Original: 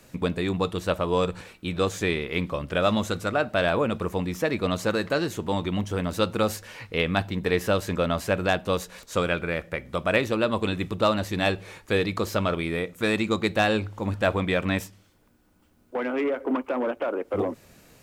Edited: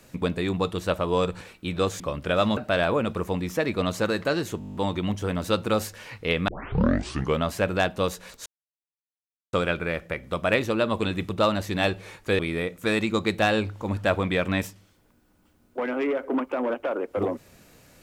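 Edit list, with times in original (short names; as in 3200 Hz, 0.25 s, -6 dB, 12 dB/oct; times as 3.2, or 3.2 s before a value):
2–2.46 cut
3.03–3.42 cut
5.44 stutter 0.02 s, 9 plays
7.17 tape start 0.95 s
9.15 insert silence 1.07 s
12.01–12.56 cut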